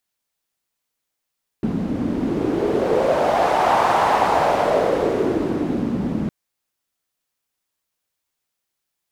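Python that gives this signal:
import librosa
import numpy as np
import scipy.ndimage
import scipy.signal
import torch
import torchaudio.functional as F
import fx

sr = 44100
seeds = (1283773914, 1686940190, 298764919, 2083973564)

y = fx.wind(sr, seeds[0], length_s=4.66, low_hz=220.0, high_hz=840.0, q=3.1, gusts=1, swing_db=6)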